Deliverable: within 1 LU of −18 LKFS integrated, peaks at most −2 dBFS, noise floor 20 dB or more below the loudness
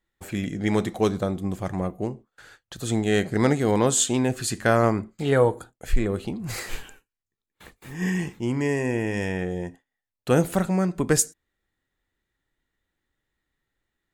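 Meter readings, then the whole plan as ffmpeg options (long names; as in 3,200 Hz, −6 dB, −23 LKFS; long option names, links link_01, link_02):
integrated loudness −24.5 LKFS; sample peak −5.0 dBFS; target loudness −18.0 LKFS
→ -af "volume=6.5dB,alimiter=limit=-2dB:level=0:latency=1"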